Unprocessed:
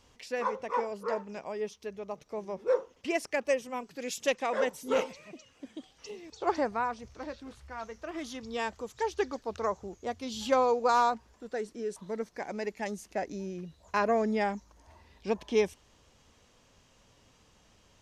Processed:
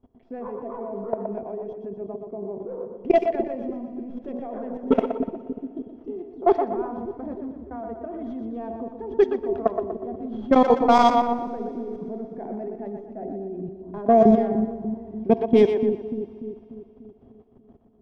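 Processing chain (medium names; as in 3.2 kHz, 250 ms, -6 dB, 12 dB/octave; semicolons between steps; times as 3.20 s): tracing distortion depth 0.17 ms; de-hum 61.99 Hz, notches 18; small resonant body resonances 250/380/670/3300 Hz, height 16 dB, ringing for 60 ms; level held to a coarse grid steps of 19 dB; time-frequency box 3.73–4.17 s, 260–8000 Hz -9 dB; two-band feedback delay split 390 Hz, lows 294 ms, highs 121 ms, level -6 dB; level-controlled noise filter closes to 770 Hz, open at -11.5 dBFS; bass shelf 160 Hz +5.5 dB; FDN reverb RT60 2.9 s, high-frequency decay 1×, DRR 19 dB; trim +4.5 dB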